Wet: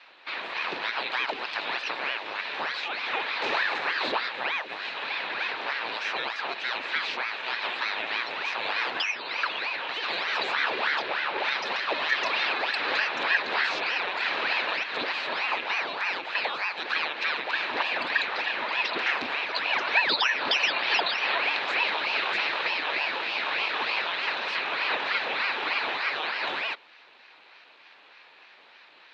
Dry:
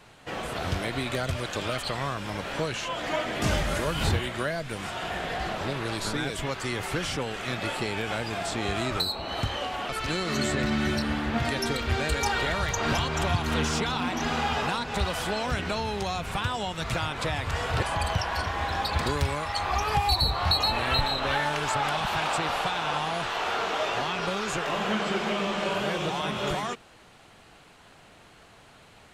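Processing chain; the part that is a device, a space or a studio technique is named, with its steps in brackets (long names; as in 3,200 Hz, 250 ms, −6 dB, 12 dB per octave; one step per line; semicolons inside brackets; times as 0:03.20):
voice changer toy (ring modulator whose carrier an LFO sweeps 980 Hz, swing 85%, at 3.3 Hz; loudspeaker in its box 440–4,400 Hz, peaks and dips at 910 Hz +3 dB, 1,700 Hz +4 dB, 2,500 Hz +8 dB, 4,000 Hz +8 dB)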